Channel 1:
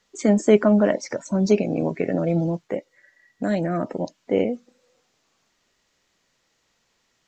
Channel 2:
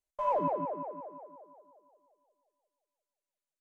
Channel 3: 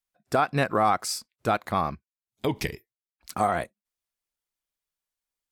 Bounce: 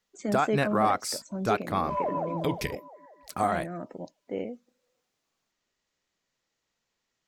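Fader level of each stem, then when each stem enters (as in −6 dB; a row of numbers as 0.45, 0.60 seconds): −12.5, −0.5, −2.5 decibels; 0.00, 1.70, 0.00 seconds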